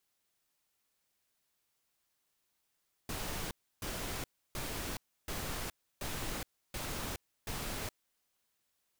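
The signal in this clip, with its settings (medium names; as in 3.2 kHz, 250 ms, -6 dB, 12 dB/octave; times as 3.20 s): noise bursts pink, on 0.42 s, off 0.31 s, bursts 7, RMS -39 dBFS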